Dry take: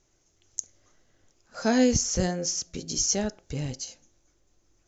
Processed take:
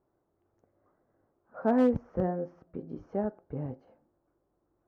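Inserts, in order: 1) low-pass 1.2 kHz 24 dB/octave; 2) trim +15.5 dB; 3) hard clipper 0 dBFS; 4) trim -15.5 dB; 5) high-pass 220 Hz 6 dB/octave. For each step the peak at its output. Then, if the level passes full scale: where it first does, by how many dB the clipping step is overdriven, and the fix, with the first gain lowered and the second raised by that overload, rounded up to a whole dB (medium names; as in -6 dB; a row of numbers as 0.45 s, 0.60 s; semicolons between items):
-12.0 dBFS, +3.5 dBFS, 0.0 dBFS, -15.5 dBFS, -14.0 dBFS; step 2, 3.5 dB; step 2 +11.5 dB, step 4 -11.5 dB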